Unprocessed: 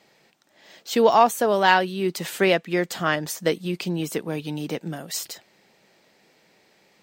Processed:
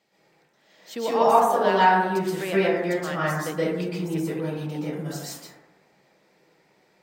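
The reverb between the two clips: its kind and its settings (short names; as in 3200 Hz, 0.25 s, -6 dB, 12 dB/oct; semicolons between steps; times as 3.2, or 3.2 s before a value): plate-style reverb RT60 1.1 s, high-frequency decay 0.25×, pre-delay 0.11 s, DRR -9.5 dB; gain -12 dB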